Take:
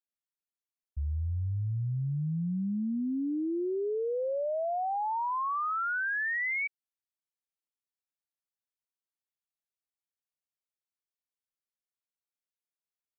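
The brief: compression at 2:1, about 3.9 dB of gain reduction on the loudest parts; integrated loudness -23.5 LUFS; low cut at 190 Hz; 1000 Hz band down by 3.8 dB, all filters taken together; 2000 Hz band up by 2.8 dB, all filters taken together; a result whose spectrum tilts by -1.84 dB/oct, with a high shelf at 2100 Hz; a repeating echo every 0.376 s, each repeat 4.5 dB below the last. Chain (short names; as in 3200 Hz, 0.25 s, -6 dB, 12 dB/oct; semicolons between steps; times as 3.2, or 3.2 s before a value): HPF 190 Hz; bell 1000 Hz -6 dB; bell 2000 Hz +8 dB; high shelf 2100 Hz -5.5 dB; compressor 2:1, threshold -33 dBFS; feedback echo 0.376 s, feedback 60%, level -4.5 dB; gain +9.5 dB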